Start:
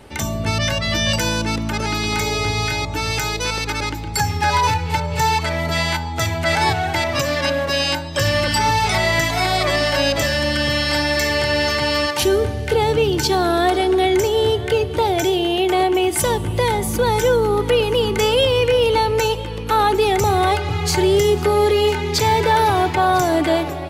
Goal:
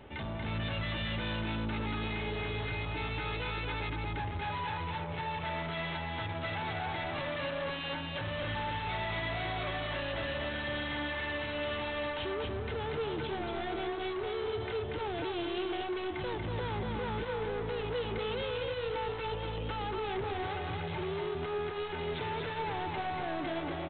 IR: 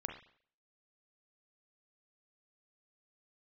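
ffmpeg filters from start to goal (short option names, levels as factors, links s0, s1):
-af "acompressor=threshold=0.141:ratio=6,aresample=8000,asoftclip=type=tanh:threshold=0.0447,aresample=44100,aecho=1:1:236:0.668,volume=0.398"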